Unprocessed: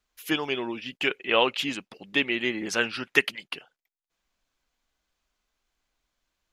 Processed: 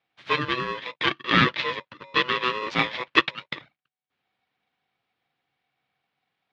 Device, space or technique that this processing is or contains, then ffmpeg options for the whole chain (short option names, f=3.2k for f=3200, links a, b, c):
ring modulator pedal into a guitar cabinet: -filter_complex "[0:a]aeval=exprs='val(0)*sgn(sin(2*PI*750*n/s))':c=same,highpass=100,equalizer=f=140:t=q:w=4:g=8,equalizer=f=400:t=q:w=4:g=-3,equalizer=f=740:t=q:w=4:g=-7,lowpass=f=3.6k:w=0.5412,lowpass=f=3.6k:w=1.3066,asettb=1/sr,asplit=3[a][b][c];[a]atrim=end=1.114[d];[b]atrim=start=1.11:end=2.39,asetpts=PTS-STARTPTS,afade=t=in:d=0.004:c=qsin,afade=t=out:st=1.276:d=0.004:c=qsin,lowpass=f=7.5k:w=0.5412,lowpass=f=7.5k:w=1.3066[e];[c]atrim=start=2.386[f];[d][e]acrossfade=d=0.004:c1=hsin:c2=qsin[g];[g][f]acrossfade=d=0.004:c1=qsin:c2=hsin,volume=3.5dB"